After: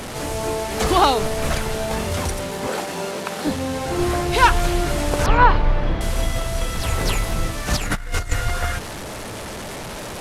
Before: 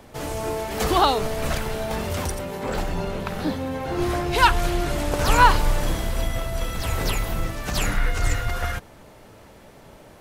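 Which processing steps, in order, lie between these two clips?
delta modulation 64 kbps, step -28.5 dBFS; 2.67–3.47 HPF 250 Hz 12 dB/oct; 5.26–6.01 air absorption 320 m; 7.7–8.32 negative-ratio compressor -25 dBFS, ratio -0.5; gain +3 dB

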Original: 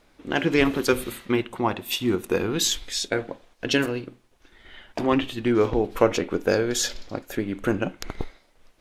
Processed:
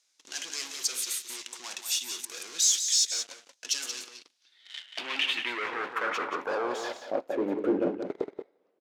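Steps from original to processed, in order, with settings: HPF 190 Hz 12 dB/oct; high shelf 3900 Hz +4.5 dB; sample leveller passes 3; reverse; compressor, threshold -19 dBFS, peak gain reduction 11 dB; reverse; overloaded stage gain 23 dB; echo 0.18 s -8 dB; band-pass sweep 6300 Hz -> 430 Hz, 3.99–7.7; gain +6 dB

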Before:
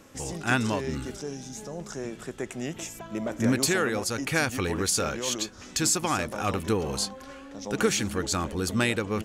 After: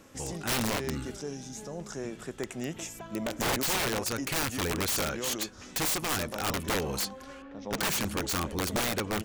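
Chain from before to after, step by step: 7.42–7.89 low-pass opened by the level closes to 2200 Hz, open at -19.5 dBFS; wrapped overs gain 21 dB; gain -2 dB

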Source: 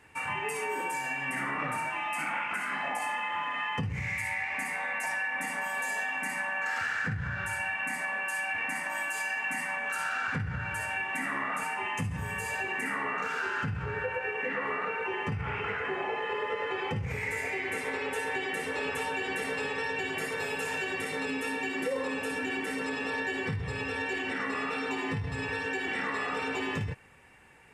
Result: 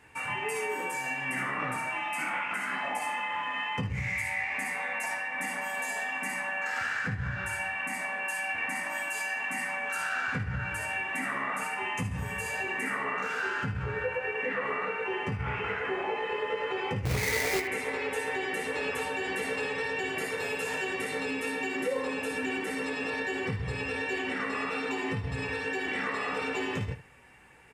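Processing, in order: 17.05–17.6 half-waves squared off; on a send: early reflections 16 ms -7.5 dB, 77 ms -14 dB

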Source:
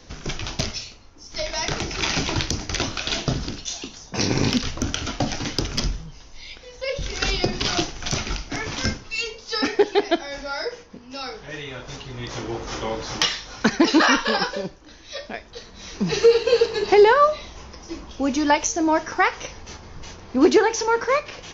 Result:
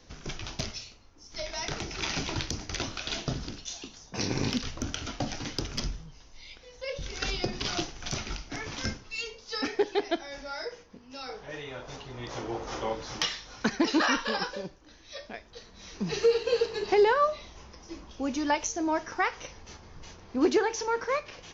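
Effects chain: 11.29–12.93 bell 690 Hz +6.5 dB 1.8 oct; gain -8.5 dB

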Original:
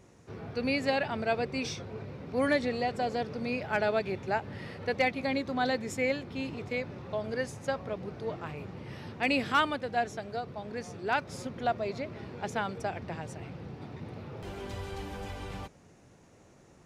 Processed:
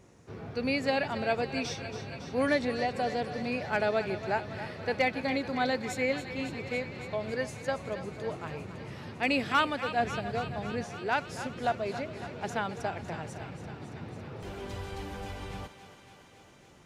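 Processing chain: 9.99–10.84 low shelf 280 Hz +9.5 dB; thinning echo 0.278 s, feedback 78%, high-pass 460 Hz, level -11 dB

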